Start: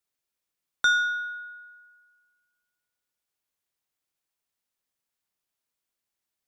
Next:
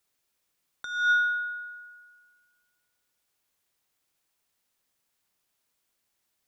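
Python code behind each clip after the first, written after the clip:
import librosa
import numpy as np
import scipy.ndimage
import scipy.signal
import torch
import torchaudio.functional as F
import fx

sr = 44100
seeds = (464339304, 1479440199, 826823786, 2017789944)

y = fx.over_compress(x, sr, threshold_db=-28.0, ratio=-0.5)
y = F.gain(torch.from_numpy(y), 4.0).numpy()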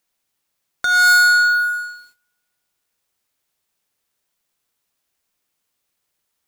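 y = fx.leveller(x, sr, passes=5)
y = fx.quant_dither(y, sr, seeds[0], bits=12, dither='triangular')
y = fx.upward_expand(y, sr, threshold_db=-35.0, expansion=1.5)
y = F.gain(torch.from_numpy(y), 6.0).numpy()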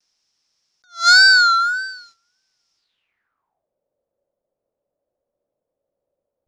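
y = fx.wow_flutter(x, sr, seeds[1], rate_hz=2.1, depth_cents=110.0)
y = fx.filter_sweep_lowpass(y, sr, from_hz=5400.0, to_hz=560.0, start_s=2.76, end_s=3.68, q=7.6)
y = fx.attack_slew(y, sr, db_per_s=230.0)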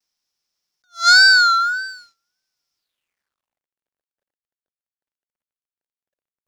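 y = fx.law_mismatch(x, sr, coded='A')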